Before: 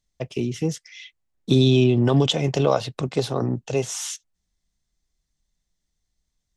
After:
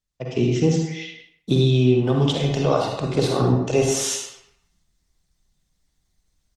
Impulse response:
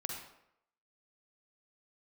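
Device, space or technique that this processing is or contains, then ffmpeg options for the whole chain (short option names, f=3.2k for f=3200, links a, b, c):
speakerphone in a meeting room: -filter_complex "[1:a]atrim=start_sample=2205[a];[0:a][a]afir=irnorm=-1:irlink=0,asplit=2[b][c];[c]adelay=160,highpass=300,lowpass=3.4k,asoftclip=type=hard:threshold=-13.5dB,volume=-16dB[d];[b][d]amix=inputs=2:normalize=0,dynaudnorm=f=120:g=5:m=14dB,volume=-5dB" -ar 48000 -c:a libopus -b:a 24k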